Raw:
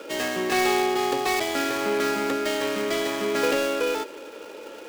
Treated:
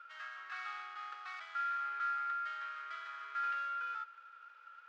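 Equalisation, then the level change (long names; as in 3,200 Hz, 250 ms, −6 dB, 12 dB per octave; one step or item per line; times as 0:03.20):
four-pole ladder high-pass 1,300 Hz, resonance 85%
high-frequency loss of the air 190 metres
−8.5 dB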